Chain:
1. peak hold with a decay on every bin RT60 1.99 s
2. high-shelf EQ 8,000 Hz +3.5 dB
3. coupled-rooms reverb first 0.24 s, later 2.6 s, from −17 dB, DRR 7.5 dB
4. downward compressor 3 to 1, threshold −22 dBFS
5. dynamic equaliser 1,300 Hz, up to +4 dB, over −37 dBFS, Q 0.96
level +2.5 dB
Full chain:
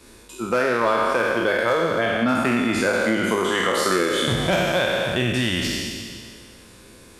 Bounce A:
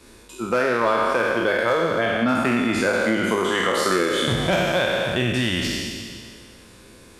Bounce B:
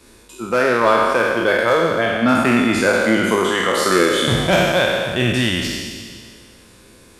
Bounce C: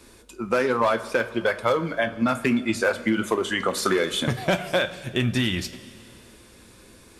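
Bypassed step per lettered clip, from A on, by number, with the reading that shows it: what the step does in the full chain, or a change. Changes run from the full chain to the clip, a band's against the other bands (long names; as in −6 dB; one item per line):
2, 8 kHz band −1.5 dB
4, change in integrated loudness +4.5 LU
1, change in integrated loudness −3.0 LU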